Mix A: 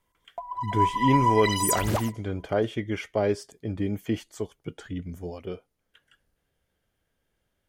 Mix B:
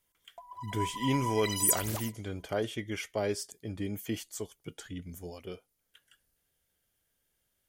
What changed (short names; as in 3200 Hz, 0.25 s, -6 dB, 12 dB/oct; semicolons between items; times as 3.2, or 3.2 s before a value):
speech +6.5 dB; master: add pre-emphasis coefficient 0.8